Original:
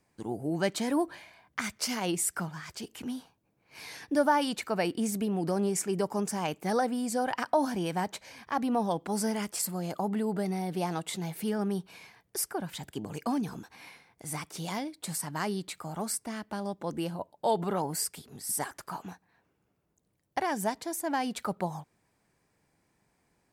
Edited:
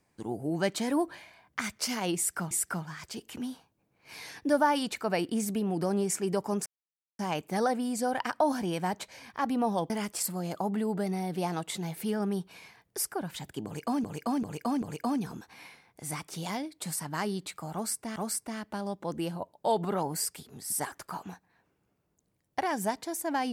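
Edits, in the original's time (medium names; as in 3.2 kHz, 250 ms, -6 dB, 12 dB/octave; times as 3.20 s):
2.17–2.51 s: loop, 2 plays
6.32 s: insert silence 0.53 s
9.03–9.29 s: delete
13.04–13.43 s: loop, 4 plays
15.95–16.38 s: loop, 2 plays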